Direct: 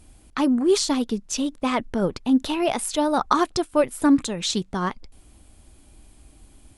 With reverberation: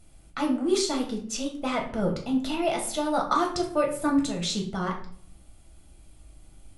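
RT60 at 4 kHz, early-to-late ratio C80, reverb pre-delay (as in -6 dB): 0.40 s, 12.5 dB, 6 ms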